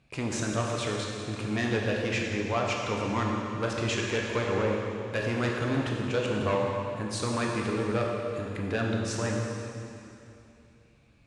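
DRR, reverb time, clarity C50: −1.5 dB, 2.8 s, 0.5 dB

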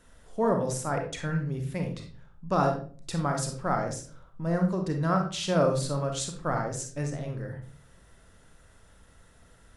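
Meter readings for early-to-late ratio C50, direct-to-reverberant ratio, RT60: 6.0 dB, 3.0 dB, 0.40 s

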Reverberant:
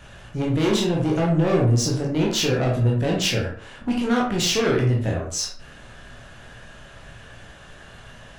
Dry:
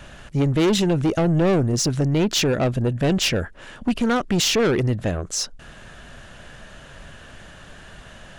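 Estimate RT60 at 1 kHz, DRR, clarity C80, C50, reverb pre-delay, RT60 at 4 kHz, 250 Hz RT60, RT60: 0.50 s, −3.0 dB, 9.5 dB, 4.5 dB, 14 ms, 0.35 s, 0.50 s, 0.50 s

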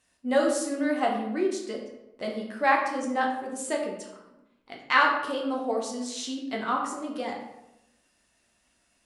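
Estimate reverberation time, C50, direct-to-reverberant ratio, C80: 0.90 s, 4.5 dB, −1.5 dB, 7.0 dB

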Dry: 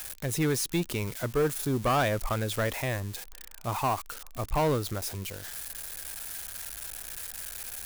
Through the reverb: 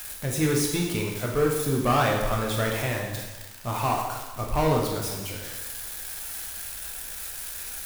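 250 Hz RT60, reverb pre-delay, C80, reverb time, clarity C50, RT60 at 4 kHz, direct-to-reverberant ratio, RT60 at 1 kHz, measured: 1.2 s, 5 ms, 5.0 dB, 1.2 s, 2.5 dB, 1.1 s, −1.5 dB, 1.2 s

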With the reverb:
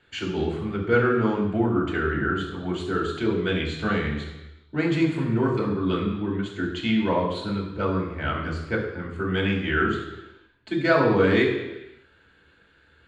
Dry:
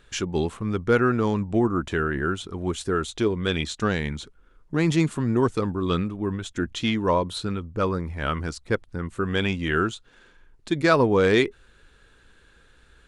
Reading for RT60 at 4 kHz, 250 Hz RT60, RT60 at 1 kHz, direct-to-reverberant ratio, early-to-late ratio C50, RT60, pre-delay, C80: 1.1 s, 1.0 s, 1.0 s, −3.5 dB, 5.5 dB, 1.1 s, 3 ms, 7.0 dB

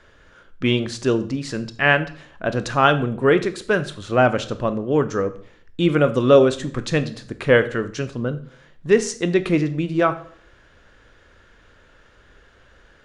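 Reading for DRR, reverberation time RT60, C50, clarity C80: 11.0 dB, 0.55 s, 15.0 dB, 18.5 dB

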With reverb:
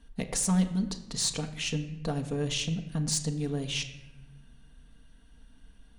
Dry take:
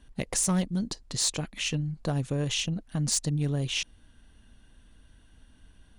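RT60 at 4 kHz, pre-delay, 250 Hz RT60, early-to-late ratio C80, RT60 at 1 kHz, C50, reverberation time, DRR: 0.65 s, 4 ms, 1.2 s, 13.0 dB, 0.95 s, 11.5 dB, 1.0 s, 4.5 dB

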